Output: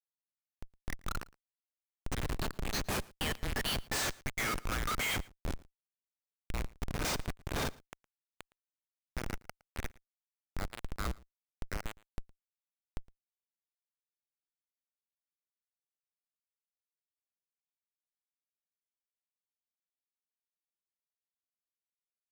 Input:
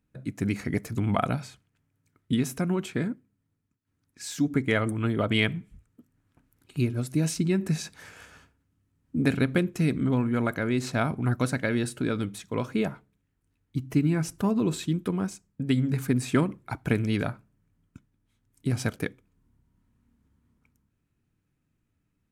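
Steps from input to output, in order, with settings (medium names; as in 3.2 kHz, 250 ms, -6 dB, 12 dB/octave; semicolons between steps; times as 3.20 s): Doppler pass-by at 4.93 s, 25 m/s, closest 25 m; elliptic high-pass 1.2 kHz, stop band 40 dB; level rider gain up to 9 dB; waveshaping leveller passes 3; in parallel at -0.5 dB: compression 8:1, threshold -32 dBFS, peak gain reduction 21.5 dB; on the sum: harmonic-percussive split percussive -16 dB; ever faster or slower copies 114 ms, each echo +6 st, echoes 3, each echo -6 dB; Schmitt trigger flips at -28 dBFS; on a send: delay 113 ms -24 dB; on the sum: trim +2.5 dB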